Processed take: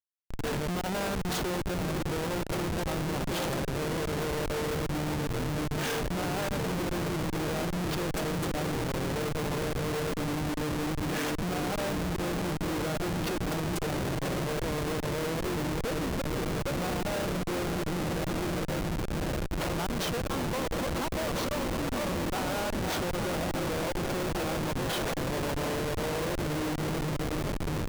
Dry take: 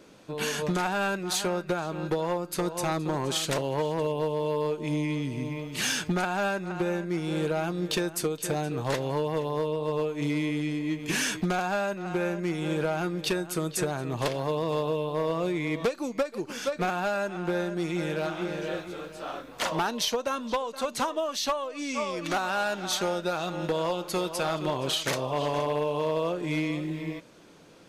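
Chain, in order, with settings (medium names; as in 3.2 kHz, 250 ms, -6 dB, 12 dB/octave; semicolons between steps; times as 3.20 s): echo that smears into a reverb 662 ms, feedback 80%, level -6 dB; volume shaper 148 bpm, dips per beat 1, -20 dB, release 63 ms; Schmitt trigger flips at -27 dBFS; trim -3 dB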